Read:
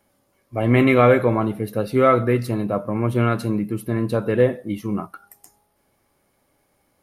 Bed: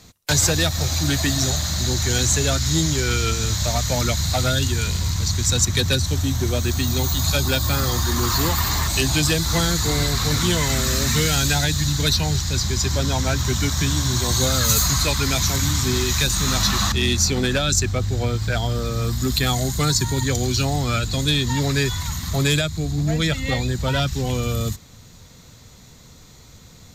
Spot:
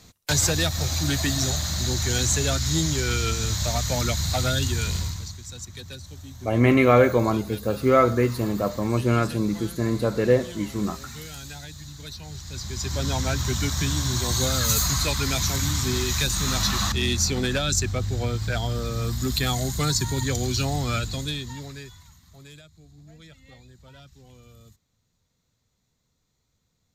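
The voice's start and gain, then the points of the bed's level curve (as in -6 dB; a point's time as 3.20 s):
5.90 s, -2.0 dB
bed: 4.99 s -3.5 dB
5.42 s -19.5 dB
12.16 s -19.5 dB
13.08 s -4 dB
20.99 s -4 dB
22.22 s -27.5 dB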